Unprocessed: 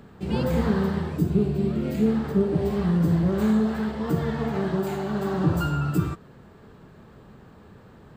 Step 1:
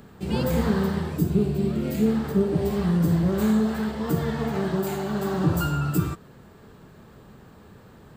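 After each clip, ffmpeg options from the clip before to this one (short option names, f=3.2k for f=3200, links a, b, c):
-af "highshelf=f=5.7k:g=10"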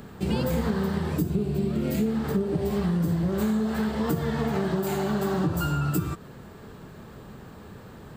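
-af "acompressor=threshold=-27dB:ratio=6,volume=4.5dB"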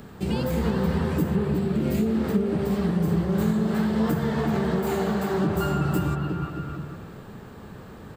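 -filter_complex "[0:a]acrossover=split=3600[a][b];[a]aecho=1:1:350|612.5|809.4|957|1068:0.631|0.398|0.251|0.158|0.1[c];[b]asoftclip=type=tanh:threshold=-35.5dB[d];[c][d]amix=inputs=2:normalize=0"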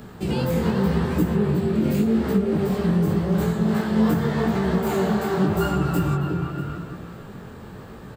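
-af "aecho=1:1:641:0.0944,flanger=delay=16:depth=7.3:speed=0.86,volume=5.5dB"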